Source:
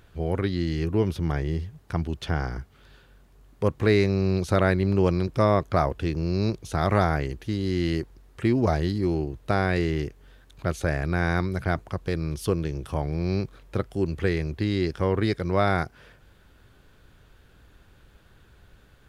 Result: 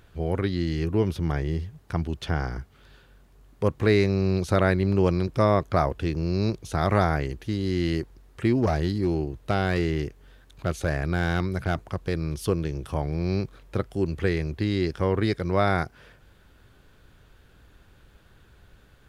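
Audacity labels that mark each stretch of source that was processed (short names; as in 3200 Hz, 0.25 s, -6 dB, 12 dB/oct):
8.600000	12.070000	hard clip -15 dBFS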